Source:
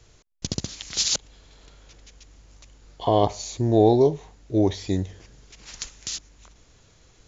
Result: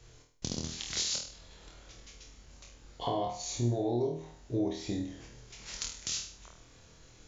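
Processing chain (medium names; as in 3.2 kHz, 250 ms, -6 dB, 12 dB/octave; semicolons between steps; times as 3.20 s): compression 6:1, threshold -29 dBFS, peak gain reduction 16 dB; on a send: flutter echo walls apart 4.3 m, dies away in 0.49 s; on the sum: trim -3.5 dB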